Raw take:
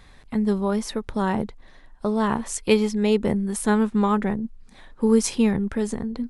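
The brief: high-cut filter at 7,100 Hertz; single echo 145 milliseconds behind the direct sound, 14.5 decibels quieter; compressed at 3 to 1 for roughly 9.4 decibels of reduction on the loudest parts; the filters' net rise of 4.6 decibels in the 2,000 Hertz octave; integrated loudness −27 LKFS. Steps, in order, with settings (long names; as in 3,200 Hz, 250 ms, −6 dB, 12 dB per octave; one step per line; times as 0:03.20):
low-pass filter 7,100 Hz
parametric band 2,000 Hz +6 dB
downward compressor 3 to 1, threshold −25 dBFS
single-tap delay 145 ms −14.5 dB
level +2 dB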